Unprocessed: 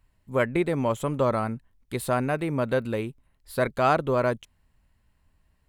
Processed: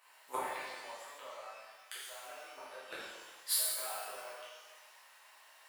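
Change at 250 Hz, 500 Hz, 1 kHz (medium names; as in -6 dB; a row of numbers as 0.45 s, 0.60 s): -32.5 dB, -23.0 dB, -15.0 dB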